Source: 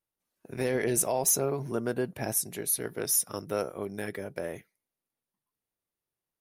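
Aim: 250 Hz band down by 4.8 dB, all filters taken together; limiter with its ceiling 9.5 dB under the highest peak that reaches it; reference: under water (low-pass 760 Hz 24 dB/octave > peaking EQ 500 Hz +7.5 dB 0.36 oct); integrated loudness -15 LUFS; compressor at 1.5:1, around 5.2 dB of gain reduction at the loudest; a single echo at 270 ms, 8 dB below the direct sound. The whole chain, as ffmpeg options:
-af "equalizer=f=250:t=o:g=-8,acompressor=threshold=0.0158:ratio=1.5,alimiter=level_in=1.68:limit=0.0631:level=0:latency=1,volume=0.596,lowpass=f=760:w=0.5412,lowpass=f=760:w=1.3066,equalizer=f=500:t=o:w=0.36:g=7.5,aecho=1:1:270:0.398,volume=15.8"

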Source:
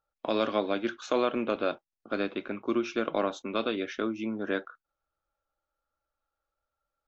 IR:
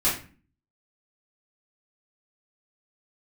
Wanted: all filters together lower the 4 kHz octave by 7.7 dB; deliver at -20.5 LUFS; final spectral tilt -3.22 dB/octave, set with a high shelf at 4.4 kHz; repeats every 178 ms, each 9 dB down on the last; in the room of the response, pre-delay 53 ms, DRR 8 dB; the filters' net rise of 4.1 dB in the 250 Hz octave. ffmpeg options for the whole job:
-filter_complex "[0:a]equalizer=f=250:t=o:g=5.5,equalizer=f=4000:t=o:g=-5.5,highshelf=f=4400:g=-8,aecho=1:1:178|356|534|712:0.355|0.124|0.0435|0.0152,asplit=2[s0][s1];[1:a]atrim=start_sample=2205,adelay=53[s2];[s1][s2]afir=irnorm=-1:irlink=0,volume=0.0944[s3];[s0][s3]amix=inputs=2:normalize=0,volume=2.37"

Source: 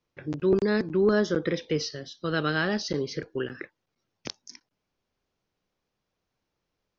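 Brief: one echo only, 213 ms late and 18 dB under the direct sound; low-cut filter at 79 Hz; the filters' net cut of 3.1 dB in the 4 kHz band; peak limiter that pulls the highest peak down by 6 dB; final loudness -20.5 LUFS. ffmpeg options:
-af "highpass=79,equalizer=f=4000:t=o:g=-4,alimiter=limit=0.133:level=0:latency=1,aecho=1:1:213:0.126,volume=2.82"

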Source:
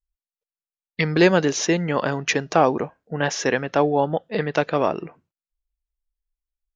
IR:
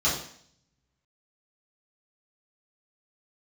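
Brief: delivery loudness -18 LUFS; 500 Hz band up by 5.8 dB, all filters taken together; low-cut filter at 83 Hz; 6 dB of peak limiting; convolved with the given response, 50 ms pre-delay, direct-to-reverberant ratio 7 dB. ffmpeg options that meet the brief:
-filter_complex "[0:a]highpass=83,equalizer=f=500:t=o:g=7,alimiter=limit=0.447:level=0:latency=1,asplit=2[s0][s1];[1:a]atrim=start_sample=2205,adelay=50[s2];[s1][s2]afir=irnorm=-1:irlink=0,volume=0.106[s3];[s0][s3]amix=inputs=2:normalize=0,volume=1.06"

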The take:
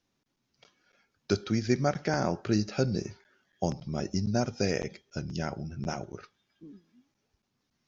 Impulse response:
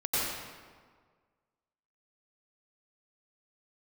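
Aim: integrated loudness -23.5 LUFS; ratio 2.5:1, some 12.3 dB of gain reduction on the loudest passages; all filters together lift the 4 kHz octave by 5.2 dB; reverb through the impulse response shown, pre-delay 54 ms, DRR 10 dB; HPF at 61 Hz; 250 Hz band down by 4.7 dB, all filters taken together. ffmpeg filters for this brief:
-filter_complex "[0:a]highpass=61,equalizer=f=250:t=o:g=-6.5,equalizer=f=4000:t=o:g=7,acompressor=threshold=0.00708:ratio=2.5,asplit=2[s0][s1];[1:a]atrim=start_sample=2205,adelay=54[s2];[s1][s2]afir=irnorm=-1:irlink=0,volume=0.106[s3];[s0][s3]amix=inputs=2:normalize=0,volume=9.44"

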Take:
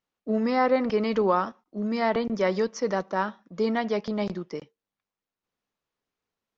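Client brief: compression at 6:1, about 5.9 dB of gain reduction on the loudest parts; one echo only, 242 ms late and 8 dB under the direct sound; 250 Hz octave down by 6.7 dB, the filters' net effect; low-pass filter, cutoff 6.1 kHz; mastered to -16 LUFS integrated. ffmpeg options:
-af "lowpass=6100,equalizer=f=250:t=o:g=-8,acompressor=threshold=0.0562:ratio=6,aecho=1:1:242:0.398,volume=5.96"

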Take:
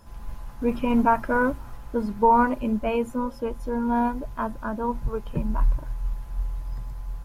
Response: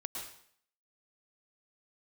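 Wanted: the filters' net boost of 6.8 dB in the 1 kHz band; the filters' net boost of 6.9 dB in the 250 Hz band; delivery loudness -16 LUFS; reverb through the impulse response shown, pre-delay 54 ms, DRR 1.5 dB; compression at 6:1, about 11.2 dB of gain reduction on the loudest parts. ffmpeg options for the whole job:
-filter_complex "[0:a]equalizer=f=250:t=o:g=7,equalizer=f=1000:t=o:g=7,acompressor=threshold=0.1:ratio=6,asplit=2[s0][s1];[1:a]atrim=start_sample=2205,adelay=54[s2];[s1][s2]afir=irnorm=-1:irlink=0,volume=0.841[s3];[s0][s3]amix=inputs=2:normalize=0,volume=2.51"

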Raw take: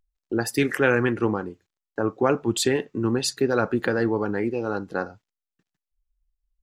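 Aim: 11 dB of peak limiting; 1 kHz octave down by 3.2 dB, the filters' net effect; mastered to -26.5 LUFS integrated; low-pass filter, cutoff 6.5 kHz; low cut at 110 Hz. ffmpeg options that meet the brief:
-af "highpass=110,lowpass=6500,equalizer=f=1000:t=o:g=-4.5,volume=1.33,alimiter=limit=0.168:level=0:latency=1"

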